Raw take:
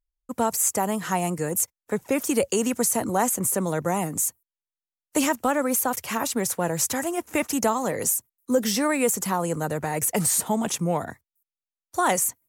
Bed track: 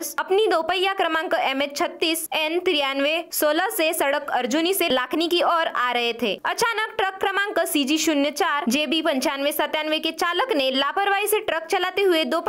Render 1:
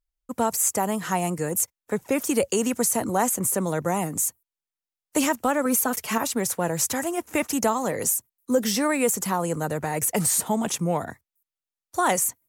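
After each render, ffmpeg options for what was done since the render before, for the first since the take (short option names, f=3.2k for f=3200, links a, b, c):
-filter_complex "[0:a]asettb=1/sr,asplit=3[a][b][c];[a]atrim=end=5.654[d];[b]atrim=start=5.65:end=6.18,asetpts=PTS-STARTPTS,afade=t=in:d=0.004:c=qsin,afade=t=out:st=0.526:d=0.004:c=qsin,aecho=1:1:4.6:0.65,atrim=end_sample=23373[e];[c]atrim=start=6.176[f];[d][e]acrossfade=d=0.004:c1=hsin:c2=qsin[g];[g][f]acrossfade=d=0.004:c1=qsin:c2=hsin"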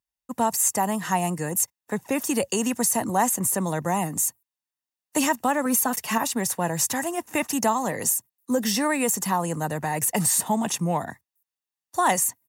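-af "highpass=120,aecho=1:1:1.1:0.39"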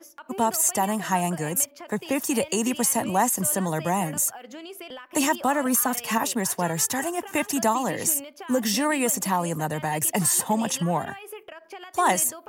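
-filter_complex "[1:a]volume=-19dB[a];[0:a][a]amix=inputs=2:normalize=0"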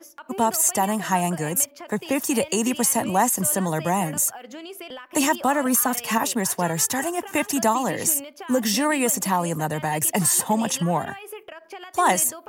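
-af "volume=2dB"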